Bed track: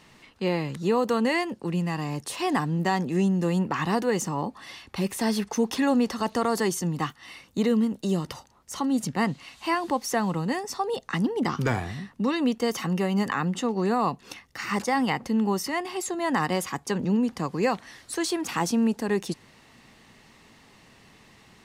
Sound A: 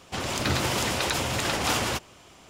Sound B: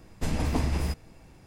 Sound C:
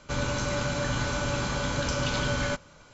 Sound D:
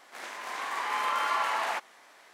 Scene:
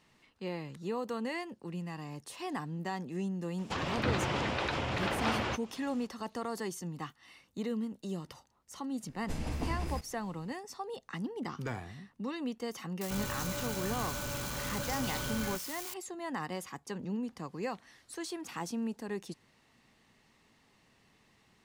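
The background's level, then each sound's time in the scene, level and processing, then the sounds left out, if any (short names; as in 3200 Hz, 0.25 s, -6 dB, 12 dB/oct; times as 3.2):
bed track -12.5 dB
3.58 add A -5 dB + treble ducked by the level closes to 2900 Hz, closed at -26 dBFS
9.07 add B -8.5 dB
13.01 add C -10 dB + switching spikes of -22.5 dBFS
not used: D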